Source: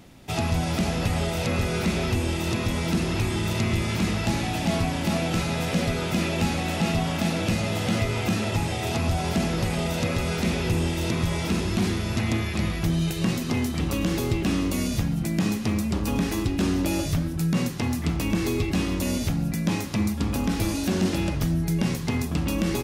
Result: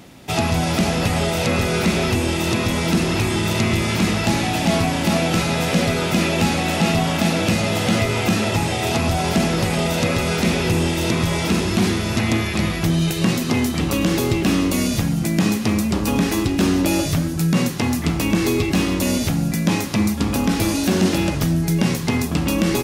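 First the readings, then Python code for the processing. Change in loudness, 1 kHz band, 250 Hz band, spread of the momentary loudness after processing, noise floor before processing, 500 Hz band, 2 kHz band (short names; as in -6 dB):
+6.0 dB, +7.5 dB, +6.0 dB, 2 LU, -29 dBFS, +7.0 dB, +7.5 dB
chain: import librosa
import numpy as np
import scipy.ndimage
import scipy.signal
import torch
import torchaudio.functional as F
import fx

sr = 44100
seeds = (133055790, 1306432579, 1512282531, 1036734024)

y = fx.low_shelf(x, sr, hz=75.0, db=-11.5)
y = fx.echo_wet_highpass(y, sr, ms=285, feedback_pct=64, hz=5500.0, wet_db=-12)
y = y * librosa.db_to_amplitude(7.5)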